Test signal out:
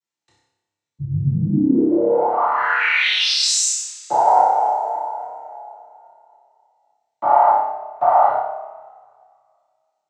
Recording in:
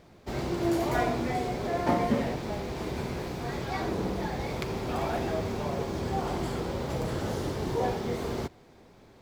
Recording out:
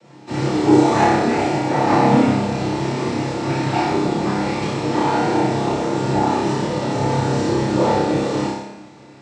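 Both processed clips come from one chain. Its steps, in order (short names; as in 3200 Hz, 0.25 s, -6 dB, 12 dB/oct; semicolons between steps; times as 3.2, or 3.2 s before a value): noise vocoder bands 12; flutter echo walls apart 5.1 m, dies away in 0.62 s; two-slope reverb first 0.57 s, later 2.1 s, from -19 dB, DRR -4.5 dB; gain +3.5 dB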